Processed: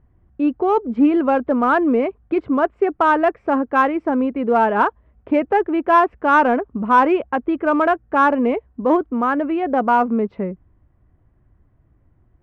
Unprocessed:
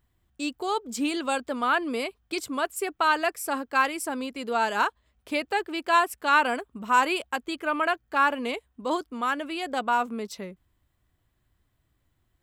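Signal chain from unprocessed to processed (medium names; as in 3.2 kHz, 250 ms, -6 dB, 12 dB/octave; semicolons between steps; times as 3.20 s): low-pass 2.4 kHz 24 dB/octave; tilt shelf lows +9.5 dB, about 1.4 kHz; in parallel at -12 dB: hard clipper -18 dBFS, distortion -12 dB; on the sum: trim +3.5 dB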